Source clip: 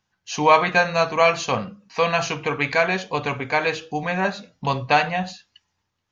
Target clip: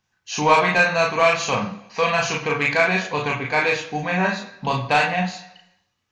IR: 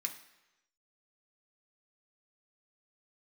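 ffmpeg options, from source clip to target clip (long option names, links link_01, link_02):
-filter_complex "[0:a]acontrast=68,asplit=2[link_01][link_02];[1:a]atrim=start_sample=2205,adelay=35[link_03];[link_02][link_03]afir=irnorm=-1:irlink=0,volume=0.5dB[link_04];[link_01][link_04]amix=inputs=2:normalize=0,volume=-7dB"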